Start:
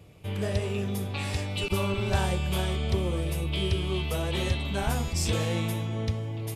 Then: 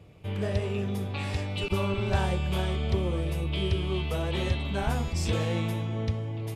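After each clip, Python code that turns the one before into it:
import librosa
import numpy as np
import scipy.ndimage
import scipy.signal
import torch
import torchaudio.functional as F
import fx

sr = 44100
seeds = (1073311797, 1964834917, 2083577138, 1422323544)

y = fx.high_shelf(x, sr, hz=5700.0, db=-11.0)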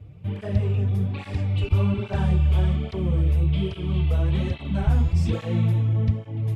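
y = fx.bass_treble(x, sr, bass_db=12, treble_db=-6)
y = fx.flanger_cancel(y, sr, hz=1.2, depth_ms=6.0)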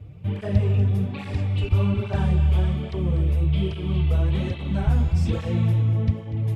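y = fx.rider(x, sr, range_db=3, speed_s=2.0)
y = fx.echo_feedback(y, sr, ms=242, feedback_pct=39, wet_db=-13.0)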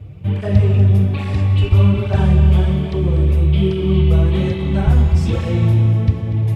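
y = fx.rev_fdn(x, sr, rt60_s=2.8, lf_ratio=1.0, hf_ratio=0.95, size_ms=16.0, drr_db=7.0)
y = y * librosa.db_to_amplitude(6.0)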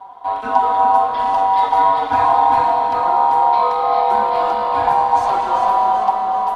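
y = x * np.sin(2.0 * np.pi * 870.0 * np.arange(len(x)) / sr)
y = fx.echo_feedback(y, sr, ms=390, feedback_pct=48, wet_db=-5.5)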